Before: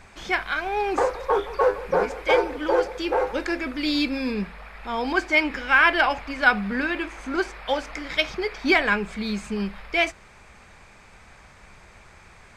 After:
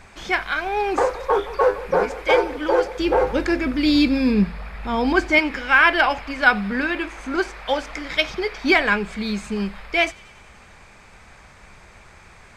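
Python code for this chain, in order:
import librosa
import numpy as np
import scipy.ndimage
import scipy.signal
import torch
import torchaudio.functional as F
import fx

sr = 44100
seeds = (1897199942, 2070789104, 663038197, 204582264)

y = fx.peak_eq(x, sr, hz=100.0, db=14.5, octaves=2.4, at=(2.99, 5.39))
y = fx.echo_wet_highpass(y, sr, ms=92, feedback_pct=69, hz=3400.0, wet_db=-19.5)
y = y * 10.0 ** (2.5 / 20.0)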